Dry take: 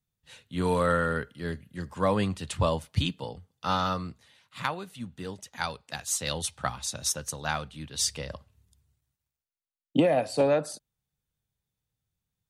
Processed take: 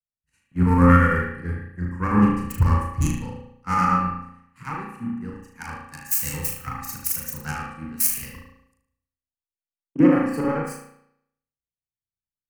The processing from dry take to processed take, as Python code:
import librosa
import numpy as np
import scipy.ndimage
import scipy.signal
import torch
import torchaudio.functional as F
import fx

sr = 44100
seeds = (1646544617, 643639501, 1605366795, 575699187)

p1 = fx.self_delay(x, sr, depth_ms=0.15)
p2 = fx.low_shelf(p1, sr, hz=470.0, db=4.5)
p3 = np.clip(10.0 ** (25.0 / 20.0) * p2, -1.0, 1.0) / 10.0 ** (25.0 / 20.0)
p4 = p2 + (p3 * librosa.db_to_amplitude(-6.5))
p5 = fx.fixed_phaser(p4, sr, hz=1500.0, stages=4)
p6 = fx.chopper(p5, sr, hz=9.0, depth_pct=65, duty_pct=65)
p7 = fx.room_flutter(p6, sr, wall_m=6.5, rt60_s=0.52)
p8 = fx.rev_spring(p7, sr, rt60_s=1.1, pass_ms=(34,), chirp_ms=50, drr_db=-2.0)
y = fx.band_widen(p8, sr, depth_pct=70)